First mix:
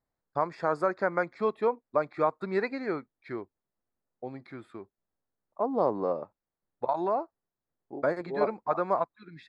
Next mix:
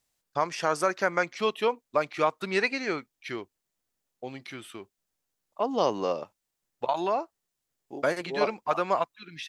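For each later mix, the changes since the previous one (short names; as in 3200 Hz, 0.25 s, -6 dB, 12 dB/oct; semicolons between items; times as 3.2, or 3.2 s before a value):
second voice: add high shelf 4100 Hz +9.5 dB; master: remove running mean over 15 samples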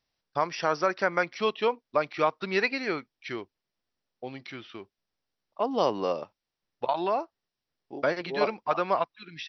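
master: add brick-wall FIR low-pass 5900 Hz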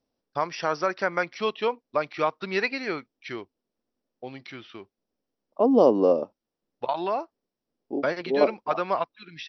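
second voice: add ten-band EQ 125 Hz -3 dB, 250 Hz +12 dB, 500 Hz +8 dB, 2000 Hz -10 dB, 4000 Hz -7 dB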